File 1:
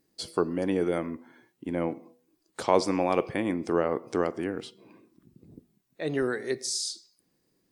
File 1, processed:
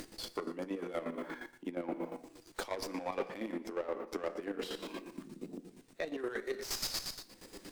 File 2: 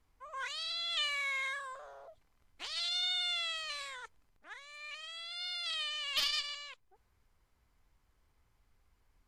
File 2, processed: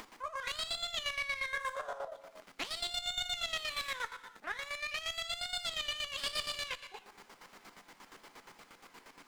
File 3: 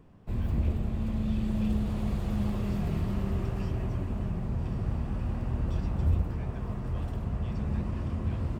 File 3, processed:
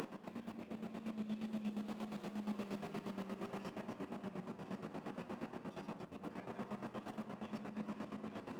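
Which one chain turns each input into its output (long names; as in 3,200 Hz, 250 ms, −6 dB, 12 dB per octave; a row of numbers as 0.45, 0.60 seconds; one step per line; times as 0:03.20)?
tape wow and flutter 28 cents
soft clipping −18 dBFS
flanger 0.28 Hz, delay 9.3 ms, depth 1.9 ms, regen −36%
reverb whose tail is shaped and stops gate 340 ms falling, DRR 9.5 dB
reversed playback
downward compressor 6 to 1, threshold −48 dBFS
reversed playback
low-shelf EQ 370 Hz −5.5 dB
upward compression, threshold −48 dBFS
square-wave tremolo 8.5 Hz, depth 65%, duty 40%
high-pass filter 190 Hz 24 dB per octave
windowed peak hold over 3 samples
level +16 dB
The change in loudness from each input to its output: −11.0, −2.0, −14.5 LU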